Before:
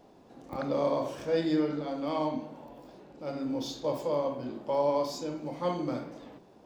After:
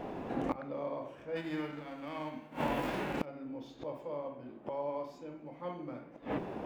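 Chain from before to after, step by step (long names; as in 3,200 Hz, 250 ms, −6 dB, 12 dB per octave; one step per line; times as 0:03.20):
0:01.35–0:03.24: spectral envelope flattened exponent 0.6
high shelf with overshoot 3,400 Hz −11 dB, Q 1.5
gate with flip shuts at −34 dBFS, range −26 dB
slew-rate limiting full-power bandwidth 9.3 Hz
level +15.5 dB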